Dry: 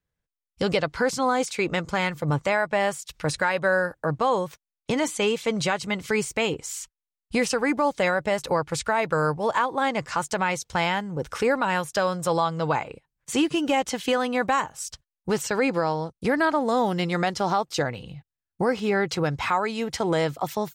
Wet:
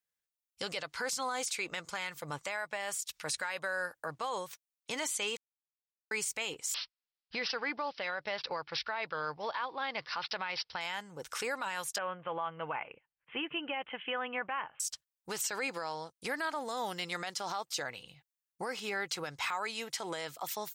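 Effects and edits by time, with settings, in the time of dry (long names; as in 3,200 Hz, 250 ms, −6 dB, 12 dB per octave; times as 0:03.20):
0:05.37–0:06.11: silence
0:06.74–0:10.81: bad sample-rate conversion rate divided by 4×, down none, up filtered
0:11.98–0:14.80: Butterworth low-pass 3,100 Hz 96 dB per octave
whole clip: spectral tilt +2.5 dB per octave; brickwall limiter −17 dBFS; low-shelf EQ 500 Hz −8 dB; level −7 dB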